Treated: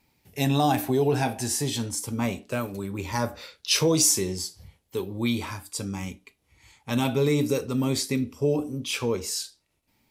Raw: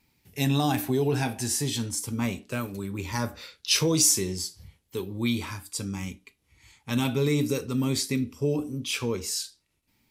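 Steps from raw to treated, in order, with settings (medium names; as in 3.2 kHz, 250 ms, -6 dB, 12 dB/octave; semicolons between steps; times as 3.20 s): peaking EQ 660 Hz +6.5 dB 1.2 oct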